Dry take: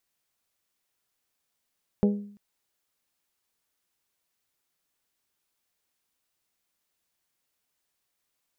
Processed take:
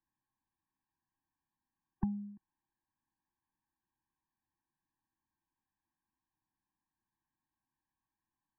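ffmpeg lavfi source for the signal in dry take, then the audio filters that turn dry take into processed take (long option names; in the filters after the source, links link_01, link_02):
-f lavfi -i "aevalsrc='0.15*pow(10,-3*t/0.58)*sin(2*PI*204*t)+0.0794*pow(10,-3*t/0.357)*sin(2*PI*408*t)+0.0422*pow(10,-3*t/0.314)*sin(2*PI*489.6*t)+0.0224*pow(10,-3*t/0.269)*sin(2*PI*612*t)+0.0119*pow(10,-3*t/0.22)*sin(2*PI*816*t)':duration=0.34:sample_rate=44100"
-filter_complex "[0:a]lowpass=frequency=1500:width=0.5412,lowpass=frequency=1500:width=1.3066,acrossover=split=100|910[link_01][link_02][link_03];[link_02]acompressor=threshold=-32dB:ratio=6[link_04];[link_01][link_04][link_03]amix=inputs=3:normalize=0,afftfilt=real='re*eq(mod(floor(b*sr/1024/380),2),0)':imag='im*eq(mod(floor(b*sr/1024/380),2),0)':win_size=1024:overlap=0.75"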